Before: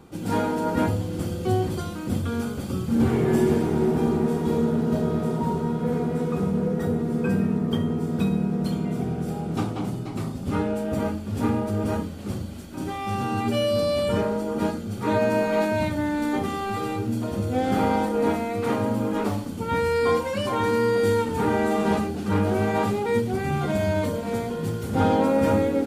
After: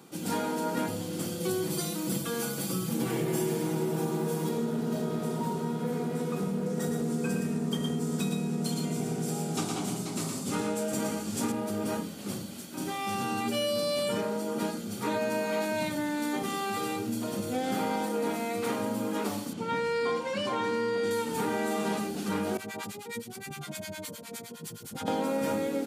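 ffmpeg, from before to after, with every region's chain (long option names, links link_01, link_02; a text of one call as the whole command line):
ffmpeg -i in.wav -filter_complex "[0:a]asettb=1/sr,asplit=3[link_01][link_02][link_03];[link_01]atrim=end=1.404[link_04];[link_02]atrim=start=1.4:end=4.49,asetpts=PTS-STARTPTS,afade=type=in:duration=0.004:curve=qsin,afade=type=out:start_time=3.086:duration=0.004:curve=qsin,highshelf=frequency=9500:gain=6,aecho=1:1:6.1:0.76,atrim=end_sample=136269[link_05];[link_03]atrim=start=4.486[link_06];[link_04][link_05]acrossfade=duration=0.004:curve1=hsin:curve2=qsin[link_07];[link_07][link_06]acrossfade=duration=0.004:curve1=qsin:curve2=hsin,asettb=1/sr,asplit=3[link_08][link_09][link_10];[link_08]atrim=end=6.664[link_11];[link_09]atrim=start=6.66:end=11.52,asetpts=PTS-STARTPTS,afade=type=in:duration=0.004:curve=qsin,afade=type=out:start_time=4.856:duration=0.004:curve=qsin,equalizer=frequency=7300:width_type=o:width=1.1:gain=8,aecho=1:1:115:0.596,atrim=end_sample=214326[link_12];[link_10]atrim=start=11.516[link_13];[link_11][link_12]acrossfade=duration=0.004:curve1=hsin:curve2=qsin[link_14];[link_14][link_13]acrossfade=duration=0.004:curve1=qsin:curve2=hsin,asettb=1/sr,asplit=3[link_15][link_16][link_17];[link_15]atrim=end=19.534[link_18];[link_16]atrim=start=19.53:end=21.11,asetpts=PTS-STARTPTS,afade=type=in:duration=0.004:curve=qsin,afade=type=out:start_time=1.576:duration=0.004:curve=qsin,highpass=55,adynamicsmooth=sensitivity=1:basefreq=5100[link_19];[link_17]atrim=start=21.106[link_20];[link_18][link_19]acrossfade=duration=0.004:curve1=hsin:curve2=qsin[link_21];[link_21][link_20]acrossfade=duration=0.004:curve1=qsin:curve2=hsin,asettb=1/sr,asplit=3[link_22][link_23][link_24];[link_22]atrim=end=22.574[link_25];[link_23]atrim=start=22.57:end=25.08,asetpts=PTS-STARTPTS,afade=type=in:duration=0.004:curve=qsin,afade=type=out:start_time=2.506:duration=0.004:curve=qsin,equalizer=frequency=440:width=0.31:gain=-9.5,acrossover=split=810[link_26][link_27];[link_26]aeval=exprs='val(0)*(1-1/2+1/2*cos(2*PI*9.7*n/s))':channel_layout=same[link_28];[link_27]aeval=exprs='val(0)*(1-1/2-1/2*cos(2*PI*9.7*n/s))':channel_layout=same[link_29];[link_28][link_29]amix=inputs=2:normalize=0[link_30];[link_24]atrim=start=25.076[link_31];[link_25][link_30]acrossfade=duration=0.004:curve1=hsin:curve2=qsin[link_32];[link_32][link_31]acrossfade=duration=0.004:curve1=qsin:curve2=hsin,highpass=frequency=140:width=0.5412,highpass=frequency=140:width=1.3066,acompressor=threshold=-24dB:ratio=3,highshelf=frequency=3000:gain=11,volume=-4dB" out.wav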